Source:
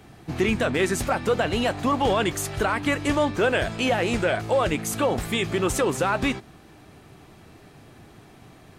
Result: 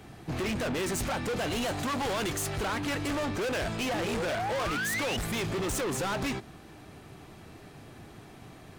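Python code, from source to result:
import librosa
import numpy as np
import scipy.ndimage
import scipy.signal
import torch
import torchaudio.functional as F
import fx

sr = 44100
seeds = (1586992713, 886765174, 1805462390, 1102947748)

y = fx.high_shelf(x, sr, hz=4700.0, db=8.0, at=(1.36, 2.33))
y = fx.spec_paint(y, sr, seeds[0], shape='rise', start_s=3.93, length_s=1.24, low_hz=290.0, high_hz=3000.0, level_db=-28.0)
y = np.clip(10.0 ** (29.0 / 20.0) * y, -1.0, 1.0) / 10.0 ** (29.0 / 20.0)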